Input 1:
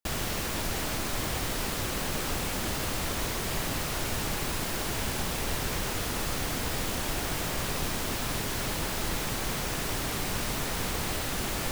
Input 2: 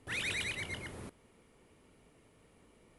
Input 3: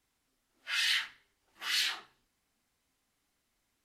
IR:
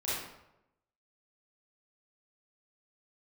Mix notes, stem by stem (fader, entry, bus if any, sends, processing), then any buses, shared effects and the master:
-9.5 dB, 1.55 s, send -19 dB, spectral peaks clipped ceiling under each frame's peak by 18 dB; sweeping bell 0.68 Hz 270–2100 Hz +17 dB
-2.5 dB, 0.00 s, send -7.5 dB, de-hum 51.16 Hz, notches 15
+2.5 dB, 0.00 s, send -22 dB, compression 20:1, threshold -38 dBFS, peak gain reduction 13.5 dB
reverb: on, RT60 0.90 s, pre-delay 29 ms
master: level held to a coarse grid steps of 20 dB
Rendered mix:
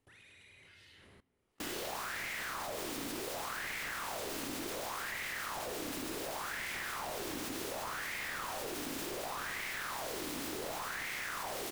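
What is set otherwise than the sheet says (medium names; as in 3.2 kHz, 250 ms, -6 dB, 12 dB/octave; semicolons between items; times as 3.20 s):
stem 2 -2.5 dB -> -13.5 dB; stem 3 +2.5 dB -> -5.0 dB; reverb return +6.5 dB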